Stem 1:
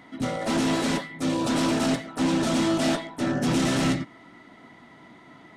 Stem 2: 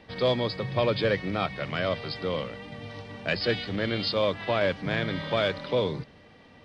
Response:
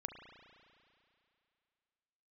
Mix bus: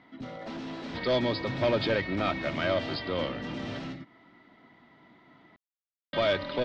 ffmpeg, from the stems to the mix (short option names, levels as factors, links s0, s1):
-filter_complex "[0:a]acompressor=threshold=0.0316:ratio=3,volume=0.398[s0];[1:a]asoftclip=type=tanh:threshold=0.0841,aecho=1:1:3.2:0.42,adelay=850,volume=1.12,asplit=3[s1][s2][s3];[s1]atrim=end=3.79,asetpts=PTS-STARTPTS,afade=t=out:st=3.786:d=0.004:c=hsin[s4];[s2]atrim=start=3.79:end=6.13,asetpts=PTS-STARTPTS,volume=0[s5];[s3]atrim=start=6.13,asetpts=PTS-STARTPTS,afade=t=in:d=0.004:c=hsin[s6];[s4][s5][s6]concat=n=3:v=0:a=1[s7];[s0][s7]amix=inputs=2:normalize=0,lowpass=f=4800:w=0.5412,lowpass=f=4800:w=1.3066"